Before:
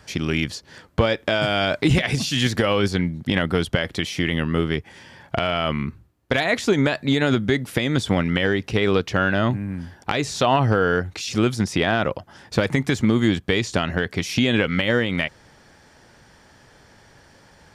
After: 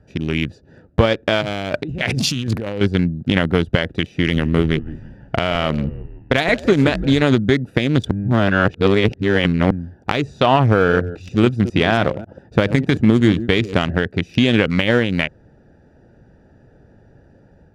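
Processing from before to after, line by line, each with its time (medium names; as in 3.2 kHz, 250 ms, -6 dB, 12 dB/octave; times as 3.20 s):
1.41–2.81 s: compressor with a negative ratio -26 dBFS
4.08–7.22 s: frequency-shifting echo 167 ms, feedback 43%, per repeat -90 Hz, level -10.5 dB
8.11–9.71 s: reverse
10.74–13.90 s: chunks repeated in reverse 137 ms, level -11 dB
whole clip: local Wiener filter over 41 samples; level rider gain up to 4 dB; trim +2 dB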